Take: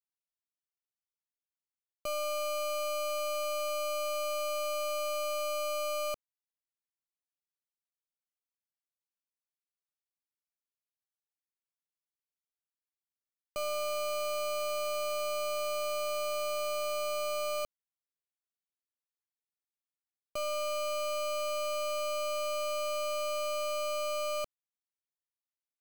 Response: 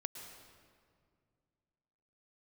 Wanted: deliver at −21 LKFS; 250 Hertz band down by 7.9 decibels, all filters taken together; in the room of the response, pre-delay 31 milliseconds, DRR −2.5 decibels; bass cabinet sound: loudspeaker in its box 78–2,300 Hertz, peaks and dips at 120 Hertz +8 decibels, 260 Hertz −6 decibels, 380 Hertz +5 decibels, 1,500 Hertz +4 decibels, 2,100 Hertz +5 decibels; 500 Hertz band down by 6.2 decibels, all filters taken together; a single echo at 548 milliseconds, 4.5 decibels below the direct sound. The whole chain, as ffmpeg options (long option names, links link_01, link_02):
-filter_complex "[0:a]equalizer=frequency=250:width_type=o:gain=-6,equalizer=frequency=500:width_type=o:gain=-7.5,aecho=1:1:548:0.596,asplit=2[link_01][link_02];[1:a]atrim=start_sample=2205,adelay=31[link_03];[link_02][link_03]afir=irnorm=-1:irlink=0,volume=4dB[link_04];[link_01][link_04]amix=inputs=2:normalize=0,highpass=frequency=78:width=0.5412,highpass=frequency=78:width=1.3066,equalizer=frequency=120:width_type=q:width=4:gain=8,equalizer=frequency=260:width_type=q:width=4:gain=-6,equalizer=frequency=380:width_type=q:width=4:gain=5,equalizer=frequency=1500:width_type=q:width=4:gain=4,equalizer=frequency=2100:width_type=q:width=4:gain=5,lowpass=frequency=2300:width=0.5412,lowpass=frequency=2300:width=1.3066,volume=16.5dB"